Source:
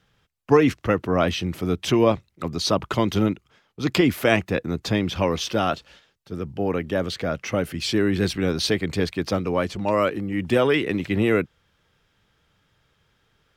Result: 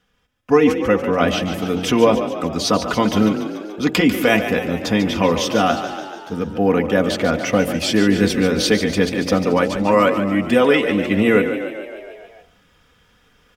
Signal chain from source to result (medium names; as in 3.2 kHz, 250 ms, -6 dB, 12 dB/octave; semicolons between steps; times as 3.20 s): peaking EQ 4.1 kHz -5.5 dB 0.29 oct; comb 4.1 ms, depth 62%; de-hum 45.26 Hz, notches 21; frequency-shifting echo 144 ms, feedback 61%, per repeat +33 Hz, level -10 dB; level rider gain up to 9.5 dB; trim -1 dB